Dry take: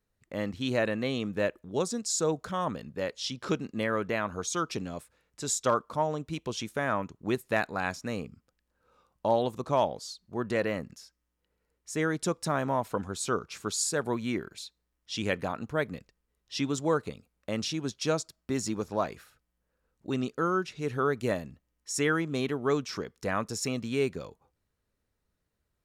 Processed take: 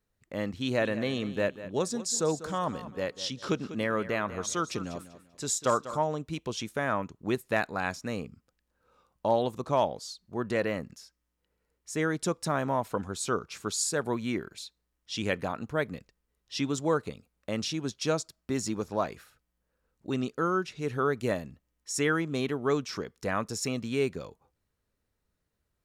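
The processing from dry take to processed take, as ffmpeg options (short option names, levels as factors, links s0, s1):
-filter_complex "[0:a]asettb=1/sr,asplit=3[s0][s1][s2];[s0]atrim=end=0.584[s3];[s1]atrim=start=0.58:end=6.05,asetpts=PTS-STARTPTS,afade=t=in:d=0.004:c=qsin,afade=t=out:st=5.466:d=0.004:c=qsin,aecho=1:1:195|390|585:0.2|0.0559|0.0156,atrim=end_sample=241227[s4];[s2]atrim=start=6.046[s5];[s3][s4]acrossfade=d=0.004:c1=hsin:c2=qsin[s6];[s6][s5]acrossfade=d=0.004:c1=qsin:c2=hsin"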